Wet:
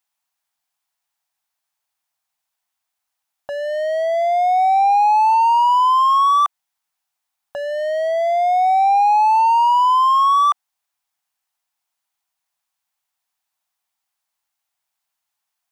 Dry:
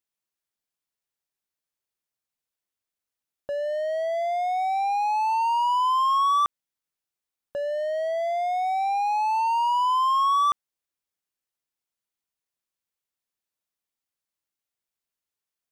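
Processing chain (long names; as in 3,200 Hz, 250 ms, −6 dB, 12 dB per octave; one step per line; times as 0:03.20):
low shelf with overshoot 600 Hz −8 dB, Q 3
in parallel at +2 dB: brickwall limiter −25.5 dBFS, peak gain reduction 12 dB
on the sum: level +1.5 dB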